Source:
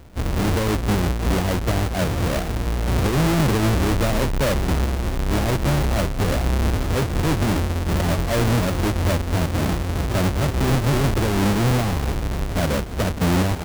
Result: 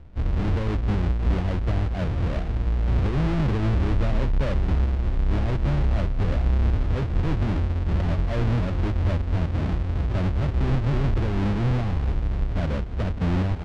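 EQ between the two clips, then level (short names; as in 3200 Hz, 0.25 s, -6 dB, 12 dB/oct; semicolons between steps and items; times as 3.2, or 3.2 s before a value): LPF 3500 Hz 12 dB/oct; low shelf 91 Hz +8 dB; low shelf 200 Hz +4.5 dB; -9.0 dB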